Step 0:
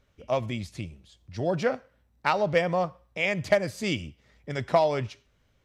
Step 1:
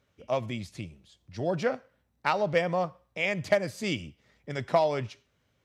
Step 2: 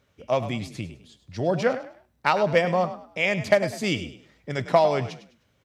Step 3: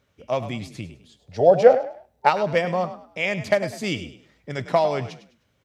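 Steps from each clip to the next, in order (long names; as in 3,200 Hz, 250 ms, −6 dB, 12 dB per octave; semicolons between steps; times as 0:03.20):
high-pass filter 90 Hz; level −2 dB
echo with shifted repeats 102 ms, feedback 30%, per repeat +37 Hz, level −13 dB; level +5 dB
gain on a spectral selection 0:01.19–0:02.29, 400–890 Hz +12 dB; level −1 dB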